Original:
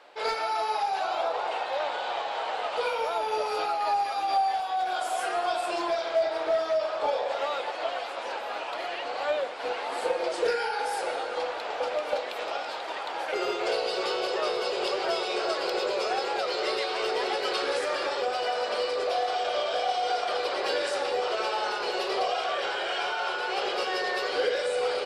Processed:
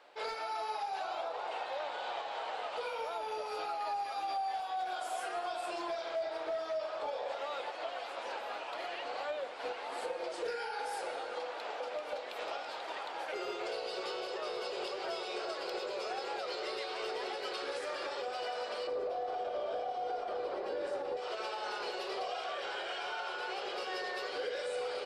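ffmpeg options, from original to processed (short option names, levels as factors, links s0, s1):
-filter_complex "[0:a]asettb=1/sr,asplit=3[s0][s1][s2];[s0]atrim=end=11.354[s3];[s1]atrim=start=11.35:end=11.96,asetpts=PTS-STARTPTS,afade=t=in:d=0.004:c=qsin,afade=t=out:st=0.606:d=0.004:c=qsin,highpass=160[s4];[s2]atrim=start=11.956[s5];[s3][s4]acrossfade=d=0.004:c1=hsin:c2=qsin[s6];[s6][s5]acrossfade=d=0.004:c1=qsin:c2=hsin,asettb=1/sr,asplit=3[s7][s8][s9];[s7]atrim=end=18.874[s10];[s8]atrim=start=18.87:end=21.17,asetpts=PTS-STARTPTS,afade=t=in:d=0.004:c=qsin,afade=t=out:st=2.296:d=0.004:c=qsin,tiltshelf=f=1200:g=9.5[s11];[s9]atrim=start=21.166[s12];[s10][s11]acrossfade=d=0.004:c1=hsin:c2=qsin[s13];[s13][s12]acrossfade=d=0.004:c1=qsin:c2=hsin,alimiter=limit=0.075:level=0:latency=1:release=287,volume=0.473"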